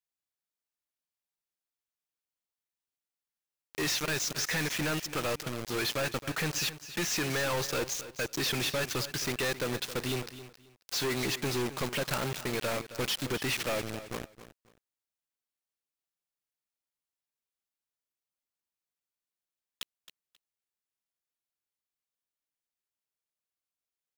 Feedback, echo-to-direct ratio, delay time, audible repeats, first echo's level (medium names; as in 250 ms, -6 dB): 22%, -14.0 dB, 268 ms, 2, -14.0 dB